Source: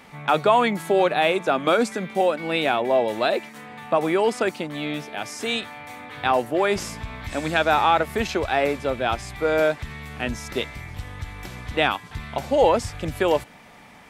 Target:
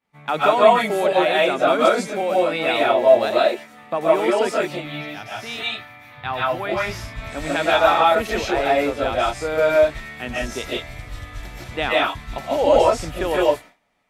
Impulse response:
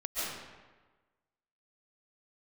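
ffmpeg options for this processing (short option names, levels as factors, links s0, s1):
-filter_complex "[0:a]agate=range=0.0224:threshold=0.0224:ratio=3:detection=peak,asettb=1/sr,asplit=3[s0][s1][s2];[s0]atrim=end=4.704[s3];[s1]atrim=start=4.7:end=7.03,asetpts=PTS-STARTPTS,afade=t=in:d=0.004:c=qsin,afade=t=out:st=2.326:d=0.004:c=qsin,equalizer=f=125:t=o:w=1:g=8,equalizer=f=250:t=o:w=1:g=-6,equalizer=f=500:t=o:w=1:g=-8,equalizer=f=8000:t=o:w=1:g=-12[s4];[s2]atrim=start=7.026[s5];[s3][s4]acrossfade=d=0.004:c1=hsin:c2=qsin[s6];[s6][s5]acrossfade=d=0.004:c1=qsin:c2=hsin[s7];[1:a]atrim=start_sample=2205,afade=t=out:st=0.23:d=0.01,atrim=end_sample=10584[s8];[s7][s8]afir=irnorm=-1:irlink=0"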